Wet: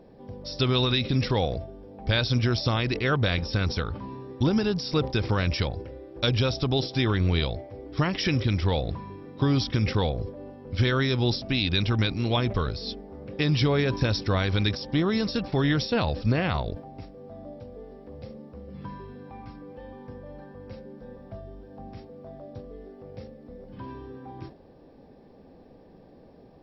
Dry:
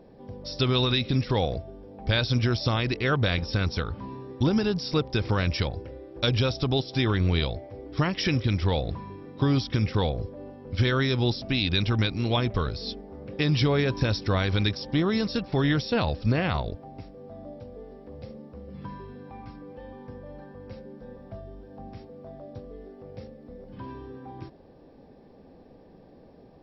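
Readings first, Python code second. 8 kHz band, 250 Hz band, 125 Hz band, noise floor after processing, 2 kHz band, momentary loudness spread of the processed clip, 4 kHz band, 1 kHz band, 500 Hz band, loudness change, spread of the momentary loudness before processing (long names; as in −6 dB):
can't be measured, 0.0 dB, 0.0 dB, −52 dBFS, 0.0 dB, 20 LU, +0.5 dB, 0.0 dB, 0.0 dB, 0.0 dB, 20 LU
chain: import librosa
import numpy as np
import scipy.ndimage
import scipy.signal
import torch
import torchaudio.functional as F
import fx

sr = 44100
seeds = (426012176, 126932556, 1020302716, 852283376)

y = fx.sustainer(x, sr, db_per_s=140.0)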